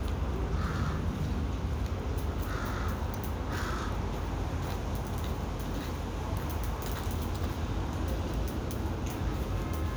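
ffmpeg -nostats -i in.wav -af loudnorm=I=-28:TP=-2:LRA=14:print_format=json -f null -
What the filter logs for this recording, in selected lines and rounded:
"input_i" : "-34.2",
"input_tp" : "-18.2",
"input_lra" : "1.4",
"input_thresh" : "-44.2",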